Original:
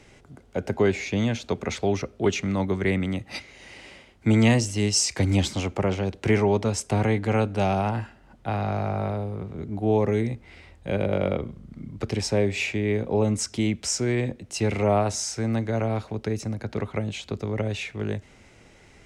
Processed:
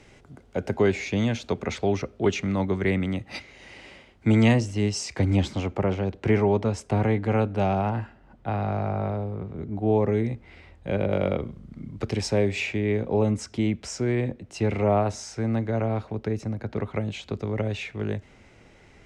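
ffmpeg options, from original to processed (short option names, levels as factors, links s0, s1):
-af "asetnsamples=n=441:p=0,asendcmd='1.51 lowpass f 4600;4.53 lowpass f 2000;10.24 lowpass f 3200;11.1 lowpass f 7000;12.6 lowpass f 3600;13.31 lowpass f 2100;16.87 lowpass f 3800',lowpass=f=8000:p=1"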